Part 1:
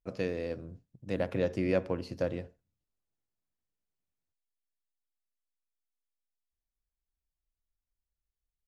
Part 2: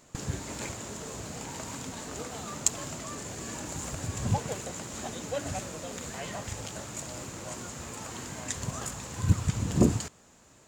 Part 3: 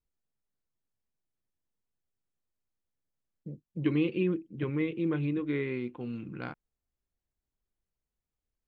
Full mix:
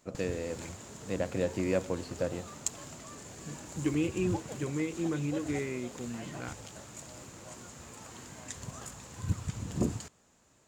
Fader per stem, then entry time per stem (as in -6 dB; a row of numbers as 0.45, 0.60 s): -1.0, -8.0, -2.5 dB; 0.00, 0.00, 0.00 s